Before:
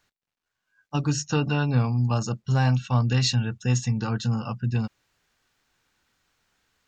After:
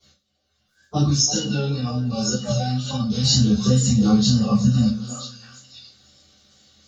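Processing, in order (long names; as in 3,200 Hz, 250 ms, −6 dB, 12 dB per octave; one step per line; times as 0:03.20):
spectral magnitudes quantised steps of 30 dB
tuned comb filter 62 Hz, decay 1.6 s, harmonics all, mix 40%
echo through a band-pass that steps 329 ms, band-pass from 570 Hz, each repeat 1.4 octaves, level −7.5 dB
brickwall limiter −22 dBFS, peak gain reduction 7 dB
downward compressor, threshold −36 dBFS, peak gain reduction 10.5 dB
0:01.07–0:03.22: low-shelf EQ 360 Hz −8.5 dB
tape wow and flutter 82 cents
octave-band graphic EQ 250/500/1,000/2,000/4,000 Hz −4/−3/−8/−9/+7 dB
convolution reverb RT60 0.30 s, pre-delay 3 ms, DRR −17.5 dB
level +3.5 dB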